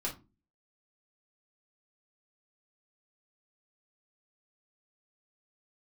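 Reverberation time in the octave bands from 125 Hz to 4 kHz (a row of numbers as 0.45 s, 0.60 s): 0.50 s, 0.50 s, 0.35 s, 0.25 s, 0.20 s, 0.20 s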